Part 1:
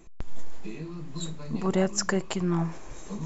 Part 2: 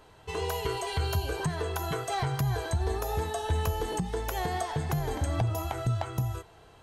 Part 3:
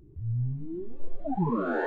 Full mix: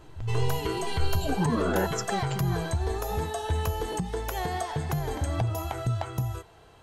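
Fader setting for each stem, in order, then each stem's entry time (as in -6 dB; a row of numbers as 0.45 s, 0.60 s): -7.0 dB, +0.5 dB, 0.0 dB; 0.00 s, 0.00 s, 0.00 s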